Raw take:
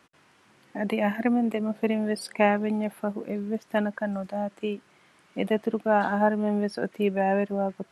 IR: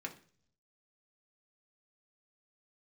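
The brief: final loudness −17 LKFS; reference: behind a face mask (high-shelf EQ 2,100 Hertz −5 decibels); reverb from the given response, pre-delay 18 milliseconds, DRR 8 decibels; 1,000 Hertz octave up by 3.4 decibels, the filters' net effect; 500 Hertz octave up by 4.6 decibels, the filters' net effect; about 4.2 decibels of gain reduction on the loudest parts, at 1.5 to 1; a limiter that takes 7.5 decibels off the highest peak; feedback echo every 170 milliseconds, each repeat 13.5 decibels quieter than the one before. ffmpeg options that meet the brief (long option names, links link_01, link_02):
-filter_complex "[0:a]equalizer=frequency=500:width_type=o:gain=5.5,equalizer=frequency=1000:width_type=o:gain=3,acompressor=threshold=-24dB:ratio=1.5,alimiter=limit=-17dB:level=0:latency=1,aecho=1:1:170|340:0.211|0.0444,asplit=2[link_01][link_02];[1:a]atrim=start_sample=2205,adelay=18[link_03];[link_02][link_03]afir=irnorm=-1:irlink=0,volume=-7.5dB[link_04];[link_01][link_04]amix=inputs=2:normalize=0,highshelf=frequency=2100:gain=-5,volume=11dB"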